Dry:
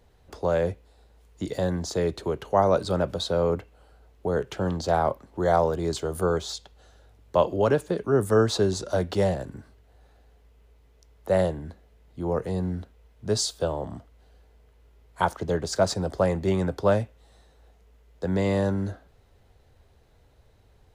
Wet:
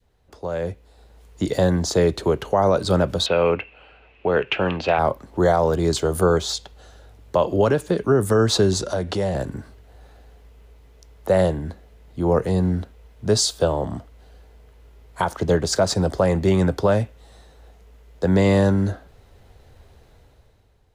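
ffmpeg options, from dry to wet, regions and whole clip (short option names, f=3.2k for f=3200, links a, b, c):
-filter_complex "[0:a]asettb=1/sr,asplit=3[a][b][c];[a]atrim=end=3.264[d];[b]atrim=start=3.26:end=4.99,asetpts=PTS-STARTPTS,afade=t=in:d=0.004:c=qsin,afade=t=out:st=1.726:d=0.004:c=qsin,lowpass=f=2.6k:t=q:w=9.3,lowshelf=f=230:g=-10[e];[c]atrim=start=4.986[f];[d][e]acrossfade=d=0.004:c1=hsin:c2=qsin[g];[g][f]acrossfade=d=0.004:c1=qsin:c2=hsin,asettb=1/sr,asplit=3[h][i][j];[h]atrim=end=8.884[k];[i]atrim=start=8.88:end=9.35,asetpts=PTS-STARTPTS,afade=t=in:d=0.004:c=qsin,afade=t=out:st=0.466:d=0.004:c=qsin,lowpass=f=12k:w=0.5412,lowpass=f=12k:w=1.3066,acompressor=threshold=-31dB:ratio=2.5:attack=3.2:release=140:knee=1:detection=peak[l];[j]atrim=start=9.346[m];[k][l]acrossfade=d=0.004:c1=hsin:c2=qsin[n];[n][m]acrossfade=d=0.004:c1=qsin:c2=hsin,adynamicequalizer=threshold=0.0251:dfrequency=660:dqfactor=0.73:tfrequency=660:tqfactor=0.73:attack=5:release=100:ratio=0.375:range=2:mode=cutabove:tftype=bell,alimiter=limit=-16dB:level=0:latency=1:release=150,dynaudnorm=f=130:g=13:m=14dB,volume=-4.5dB"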